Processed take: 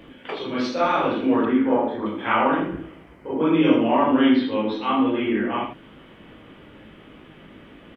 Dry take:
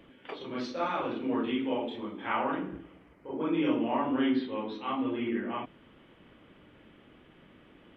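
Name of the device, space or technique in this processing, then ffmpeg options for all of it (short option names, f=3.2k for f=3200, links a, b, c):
slapback doubling: -filter_complex "[0:a]asplit=3[a][b][c];[b]adelay=19,volume=-5.5dB[d];[c]adelay=80,volume=-7dB[e];[a][d][e]amix=inputs=3:normalize=0,asettb=1/sr,asplit=3[f][g][h];[f]atrim=end=1.454[i];[g]atrim=start=1.45:end=2.06,asetpts=PTS-STARTPTS,afade=t=in:d=0.004:c=qsin,afade=t=out:st=0.606:d=0.004:c=qsin,highshelf=f=2.1k:t=q:w=3:g=-9.5[j];[h]atrim=start=2.056[k];[i][j]acrossfade=d=0.004:c1=hsin:c2=qsin[l];[l][k]acrossfade=d=0.004:c1=qsin:c2=hsin,volume=9dB"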